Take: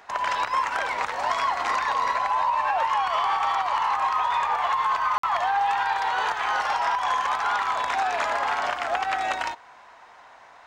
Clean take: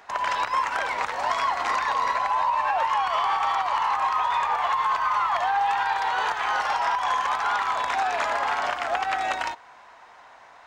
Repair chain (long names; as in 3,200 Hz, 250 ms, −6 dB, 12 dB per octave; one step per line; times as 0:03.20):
repair the gap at 0:05.18, 54 ms